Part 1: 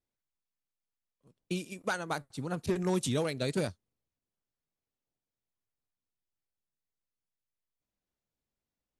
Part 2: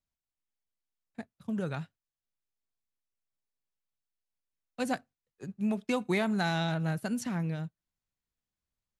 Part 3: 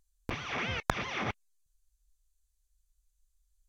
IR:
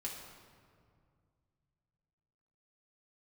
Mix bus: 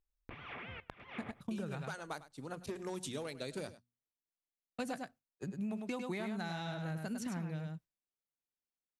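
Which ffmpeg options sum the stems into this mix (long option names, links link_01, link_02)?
-filter_complex "[0:a]lowshelf=frequency=130:gain=-10.5,bandreject=frequency=60:width_type=h:width=6,bandreject=frequency=120:width_type=h:width=6,bandreject=frequency=180:width_type=h:width=6,bandreject=frequency=240:width_type=h:width=6,volume=-6dB,asplit=2[link_01][link_02];[link_02]volume=-18dB[link_03];[1:a]agate=range=-33dB:threshold=-57dB:ratio=3:detection=peak,volume=1dB,asplit=2[link_04][link_05];[link_05]volume=-6dB[link_06];[2:a]lowpass=frequency=3100:width=0.5412,lowpass=frequency=3100:width=1.3066,acompressor=threshold=-37dB:ratio=10,volume=-6.5dB,asplit=2[link_07][link_08];[link_08]volume=-18.5dB[link_09];[link_03][link_06][link_09]amix=inputs=3:normalize=0,aecho=0:1:101:1[link_10];[link_01][link_04][link_07][link_10]amix=inputs=4:normalize=0,agate=range=-6dB:threshold=-52dB:ratio=16:detection=peak,acompressor=threshold=-37dB:ratio=6"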